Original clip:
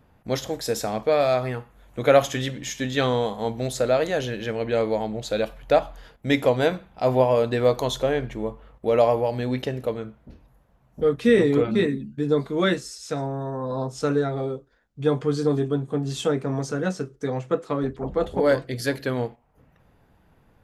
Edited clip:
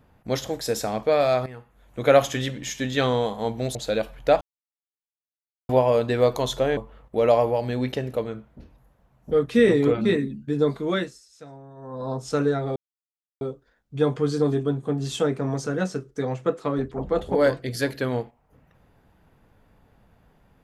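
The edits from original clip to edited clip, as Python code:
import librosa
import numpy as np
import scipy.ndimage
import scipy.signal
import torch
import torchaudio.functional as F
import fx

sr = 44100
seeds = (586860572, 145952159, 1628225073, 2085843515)

y = fx.edit(x, sr, fx.fade_in_from(start_s=1.46, length_s=0.64, floor_db=-14.0),
    fx.cut(start_s=3.75, length_s=1.43),
    fx.silence(start_s=5.84, length_s=1.28),
    fx.cut(start_s=8.2, length_s=0.27),
    fx.fade_down_up(start_s=12.48, length_s=1.41, db=-15.5, fade_s=0.43),
    fx.insert_silence(at_s=14.46, length_s=0.65), tone=tone)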